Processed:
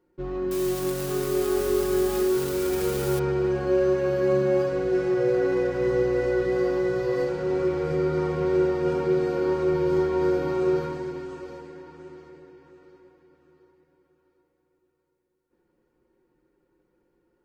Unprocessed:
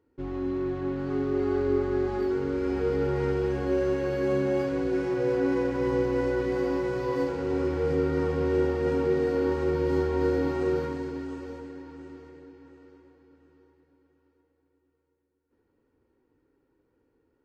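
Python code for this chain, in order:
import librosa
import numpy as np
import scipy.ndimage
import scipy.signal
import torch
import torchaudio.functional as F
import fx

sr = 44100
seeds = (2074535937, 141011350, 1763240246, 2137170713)

y = fx.crossing_spikes(x, sr, level_db=-23.0, at=(0.51, 3.19))
y = y + 0.79 * np.pad(y, (int(5.6 * sr / 1000.0), 0))[:len(y)]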